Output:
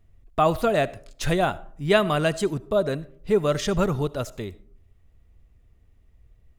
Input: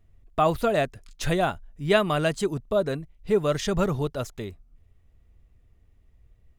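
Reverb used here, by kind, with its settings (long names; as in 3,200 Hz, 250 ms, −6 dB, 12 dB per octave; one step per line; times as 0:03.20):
comb and all-pass reverb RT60 0.57 s, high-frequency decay 0.45×, pre-delay 30 ms, DRR 19 dB
level +1.5 dB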